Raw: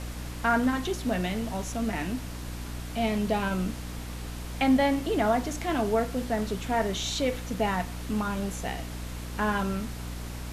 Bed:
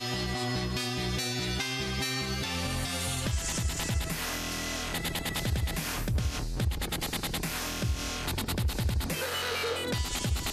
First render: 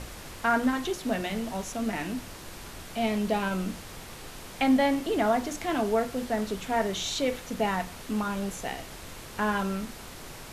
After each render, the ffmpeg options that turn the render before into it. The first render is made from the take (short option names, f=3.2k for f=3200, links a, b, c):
-af "bandreject=f=60:t=h:w=6,bandreject=f=120:t=h:w=6,bandreject=f=180:t=h:w=6,bandreject=f=240:t=h:w=6,bandreject=f=300:t=h:w=6"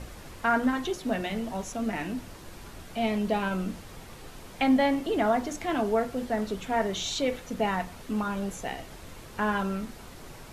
-af "afftdn=nr=6:nf=-44"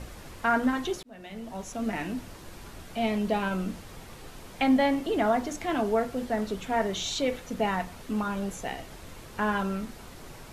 -filter_complex "[0:a]asplit=2[a][b];[a]atrim=end=1.03,asetpts=PTS-STARTPTS,afade=t=out:st=1.026:d=0.004:c=hsin[c];[b]atrim=start=1.03,asetpts=PTS-STARTPTS,afade=t=in:d=0.86[d];[c][d]concat=n=2:v=0:a=1"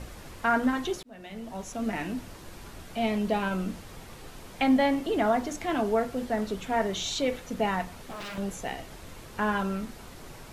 -filter_complex "[0:a]asettb=1/sr,asplit=3[a][b][c];[a]atrim=end=7.934[d];[b]atrim=start=7.93:end=8.38,asetpts=PTS-STARTPTS,afade=t=in:d=0.004:c=qsin,afade=t=out:st=0.446:d=0.004:c=qsin,aeval=exprs='0.0211*(abs(mod(val(0)/0.0211+3,4)-2)-1)':c=same[e];[c]atrim=start=8.376[f];[d][e]acrossfade=d=0.004:c1=hsin:c2=qsin[g];[g][f]acrossfade=d=0.004:c1=qsin:c2=hsin"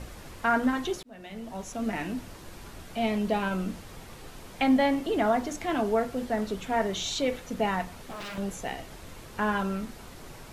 -af anull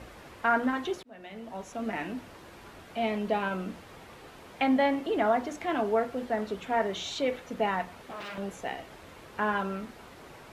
-af "highpass=49,bass=f=250:g=-7,treble=f=4k:g=-9"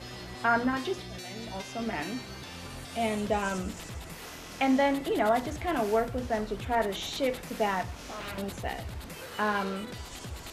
-filter_complex "[1:a]volume=-11dB[a];[0:a][a]amix=inputs=2:normalize=0"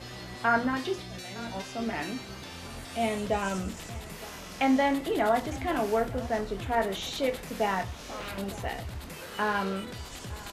-filter_complex "[0:a]asplit=2[a][b];[b]adelay=26,volume=-10.5dB[c];[a][c]amix=inputs=2:normalize=0,aecho=1:1:912:0.112"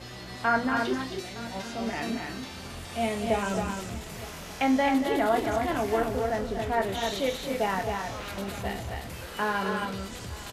-af "aecho=1:1:233.2|268.2:0.282|0.562"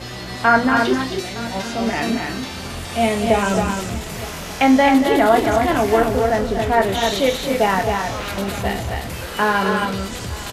-af "volume=10.5dB,alimiter=limit=-2dB:level=0:latency=1"